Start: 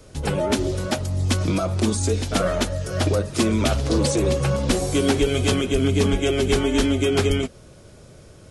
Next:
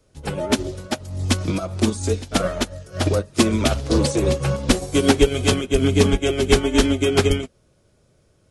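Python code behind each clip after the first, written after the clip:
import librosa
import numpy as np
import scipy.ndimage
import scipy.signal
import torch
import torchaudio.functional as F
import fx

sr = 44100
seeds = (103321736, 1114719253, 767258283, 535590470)

y = fx.upward_expand(x, sr, threshold_db=-29.0, expansion=2.5)
y = y * 10.0 ** (7.0 / 20.0)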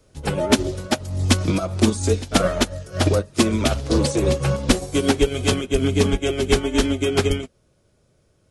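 y = fx.rider(x, sr, range_db=4, speed_s=0.5)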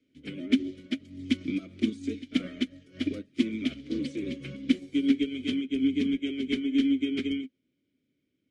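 y = fx.vowel_filter(x, sr, vowel='i')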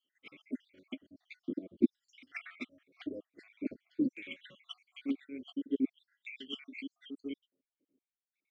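y = fx.spec_dropout(x, sr, seeds[0], share_pct=68)
y = fx.filter_lfo_bandpass(y, sr, shape='saw_down', hz=0.48, low_hz=280.0, high_hz=2500.0, q=1.7)
y = y * 10.0 ** (4.0 / 20.0)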